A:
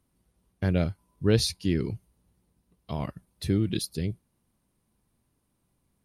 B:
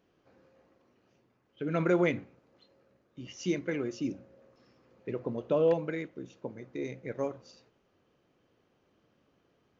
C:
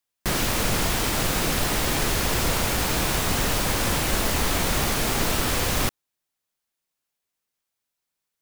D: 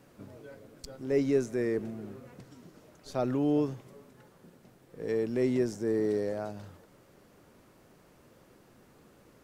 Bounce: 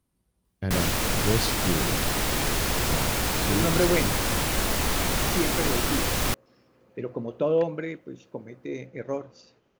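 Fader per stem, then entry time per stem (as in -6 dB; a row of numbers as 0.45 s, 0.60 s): -3.0 dB, +2.5 dB, -2.0 dB, mute; 0.00 s, 1.90 s, 0.45 s, mute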